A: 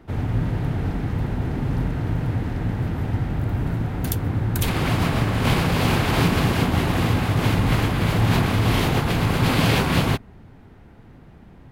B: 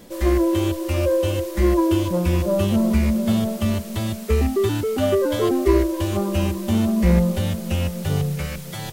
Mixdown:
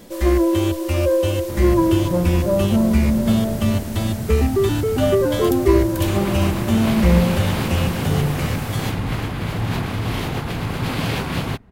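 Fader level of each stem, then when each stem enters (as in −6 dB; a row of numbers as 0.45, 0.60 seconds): −4.0, +2.0 decibels; 1.40, 0.00 seconds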